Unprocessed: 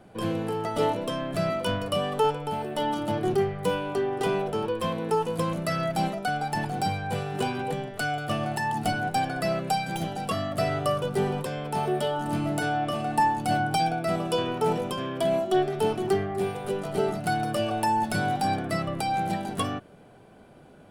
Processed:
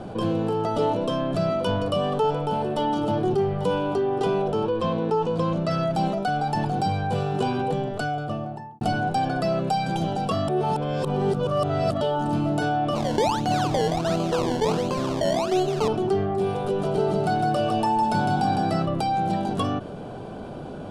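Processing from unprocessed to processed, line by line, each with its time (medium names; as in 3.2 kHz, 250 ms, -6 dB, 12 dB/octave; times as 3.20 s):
0.84–3.98 s: delay 841 ms -16 dB
4.68–5.71 s: low-pass 6.1 kHz
7.65–8.81 s: studio fade out
10.48–12.01 s: reverse
12.95–15.88 s: decimation with a swept rate 24× 1.4 Hz
16.64–18.86 s: bit-crushed delay 157 ms, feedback 35%, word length 9-bit, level -4 dB
whole clip: Bessel low-pass 4.8 kHz, order 2; peaking EQ 2 kHz -11 dB 0.75 oct; level flattener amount 50%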